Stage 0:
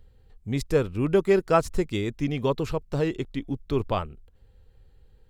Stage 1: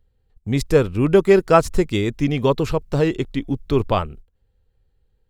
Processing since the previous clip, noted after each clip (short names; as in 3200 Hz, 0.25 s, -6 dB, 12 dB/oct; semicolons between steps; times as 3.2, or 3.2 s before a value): gate -45 dBFS, range -16 dB; gain +7 dB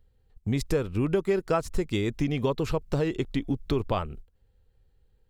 compressor 4:1, threshold -24 dBFS, peak gain reduction 14 dB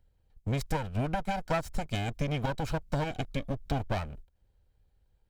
minimum comb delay 1.3 ms; gain -3 dB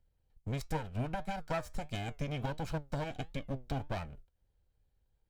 flange 1.5 Hz, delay 5.6 ms, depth 2.8 ms, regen +81%; gain -1.5 dB